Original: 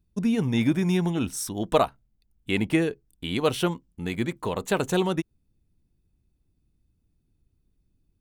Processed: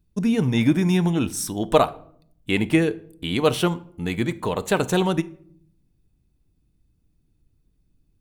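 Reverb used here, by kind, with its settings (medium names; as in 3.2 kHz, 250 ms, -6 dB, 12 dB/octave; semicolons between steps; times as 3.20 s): simulated room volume 930 m³, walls furnished, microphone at 0.45 m; trim +3.5 dB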